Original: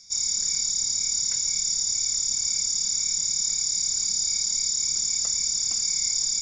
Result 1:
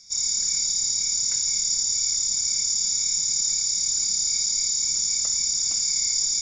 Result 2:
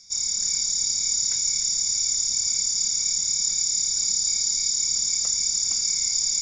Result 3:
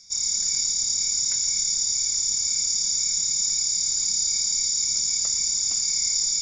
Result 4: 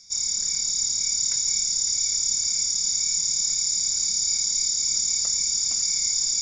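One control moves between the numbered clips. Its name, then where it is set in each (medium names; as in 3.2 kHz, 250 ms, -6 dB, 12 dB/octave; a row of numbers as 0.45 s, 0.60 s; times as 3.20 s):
feedback echo behind a high-pass, time: 63 ms, 300 ms, 119 ms, 559 ms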